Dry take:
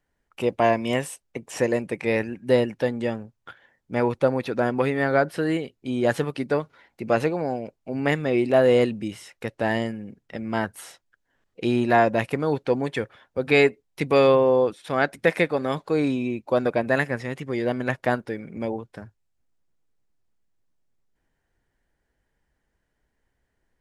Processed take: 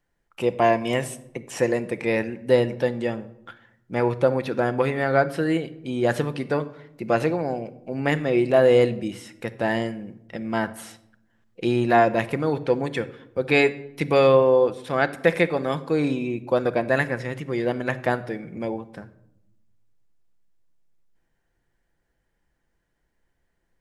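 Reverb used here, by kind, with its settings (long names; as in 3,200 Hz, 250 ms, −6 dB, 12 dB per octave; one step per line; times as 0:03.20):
rectangular room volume 2,300 cubic metres, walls furnished, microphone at 0.8 metres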